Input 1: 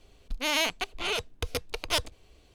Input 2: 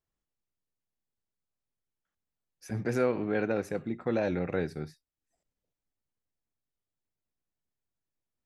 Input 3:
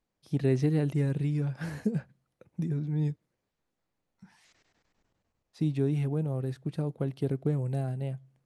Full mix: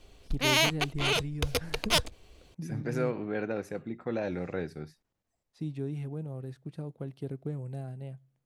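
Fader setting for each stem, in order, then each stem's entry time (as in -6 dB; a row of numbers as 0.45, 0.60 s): +2.0, -3.5, -7.5 dB; 0.00, 0.00, 0.00 s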